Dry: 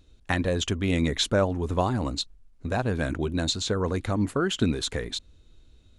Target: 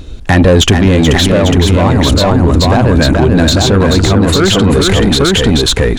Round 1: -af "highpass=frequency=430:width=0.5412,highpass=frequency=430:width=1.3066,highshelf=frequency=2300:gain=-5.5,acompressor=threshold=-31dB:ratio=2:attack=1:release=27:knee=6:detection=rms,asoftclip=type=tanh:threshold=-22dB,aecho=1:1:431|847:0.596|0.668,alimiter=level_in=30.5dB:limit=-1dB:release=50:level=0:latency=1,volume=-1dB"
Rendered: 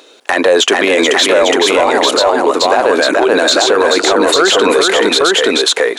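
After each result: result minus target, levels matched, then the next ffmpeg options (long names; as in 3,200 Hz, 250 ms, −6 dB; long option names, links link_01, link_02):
soft clipping: distortion −9 dB; 500 Hz band +3.5 dB
-af "highpass=frequency=430:width=0.5412,highpass=frequency=430:width=1.3066,highshelf=frequency=2300:gain=-5.5,acompressor=threshold=-31dB:ratio=2:attack=1:release=27:knee=6:detection=rms,asoftclip=type=tanh:threshold=-29dB,aecho=1:1:431|847:0.596|0.668,alimiter=level_in=30.5dB:limit=-1dB:release=50:level=0:latency=1,volume=-1dB"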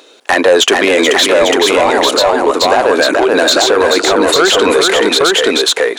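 500 Hz band +3.5 dB
-af "highshelf=frequency=2300:gain=-5.5,acompressor=threshold=-31dB:ratio=2:attack=1:release=27:knee=6:detection=rms,asoftclip=type=tanh:threshold=-29dB,aecho=1:1:431|847:0.596|0.668,alimiter=level_in=30.5dB:limit=-1dB:release=50:level=0:latency=1,volume=-1dB"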